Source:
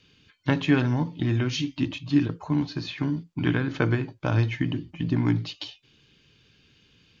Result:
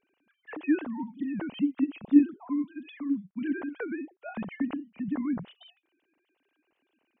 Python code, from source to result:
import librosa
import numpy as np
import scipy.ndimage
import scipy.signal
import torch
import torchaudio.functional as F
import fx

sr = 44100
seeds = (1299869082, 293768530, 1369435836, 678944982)

y = fx.sine_speech(x, sr)
y = fx.lowpass(y, sr, hz=1500.0, slope=6)
y = F.gain(torch.from_numpy(y), -4.0).numpy()